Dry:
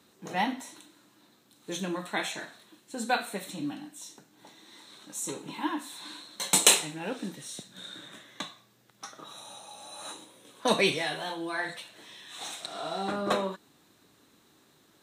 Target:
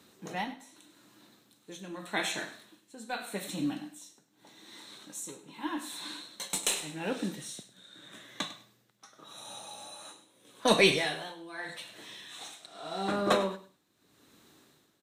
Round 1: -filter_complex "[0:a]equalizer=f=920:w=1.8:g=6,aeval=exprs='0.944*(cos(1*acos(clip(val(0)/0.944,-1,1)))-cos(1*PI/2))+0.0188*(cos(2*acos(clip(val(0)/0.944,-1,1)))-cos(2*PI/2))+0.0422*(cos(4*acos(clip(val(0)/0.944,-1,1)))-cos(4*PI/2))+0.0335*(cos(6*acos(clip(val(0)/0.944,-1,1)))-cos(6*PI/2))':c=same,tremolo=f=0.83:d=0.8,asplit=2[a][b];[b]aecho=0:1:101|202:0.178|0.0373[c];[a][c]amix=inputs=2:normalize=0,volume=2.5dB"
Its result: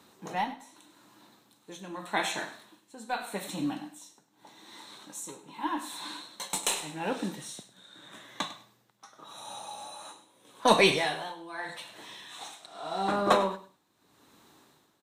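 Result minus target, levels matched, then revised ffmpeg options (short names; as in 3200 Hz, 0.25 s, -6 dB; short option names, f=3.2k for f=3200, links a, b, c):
1000 Hz band +4.5 dB
-filter_complex "[0:a]equalizer=f=920:w=1.8:g=-2,aeval=exprs='0.944*(cos(1*acos(clip(val(0)/0.944,-1,1)))-cos(1*PI/2))+0.0188*(cos(2*acos(clip(val(0)/0.944,-1,1)))-cos(2*PI/2))+0.0422*(cos(4*acos(clip(val(0)/0.944,-1,1)))-cos(4*PI/2))+0.0335*(cos(6*acos(clip(val(0)/0.944,-1,1)))-cos(6*PI/2))':c=same,tremolo=f=0.83:d=0.8,asplit=2[a][b];[b]aecho=0:1:101|202:0.178|0.0373[c];[a][c]amix=inputs=2:normalize=0,volume=2.5dB"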